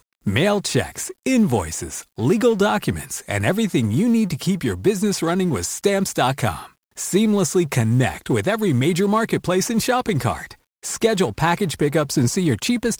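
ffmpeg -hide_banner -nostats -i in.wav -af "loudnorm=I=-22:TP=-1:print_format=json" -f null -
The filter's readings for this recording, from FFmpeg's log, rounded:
"input_i" : "-20.2",
"input_tp" : "-4.9",
"input_lra" : "0.9",
"input_thresh" : "-30.5",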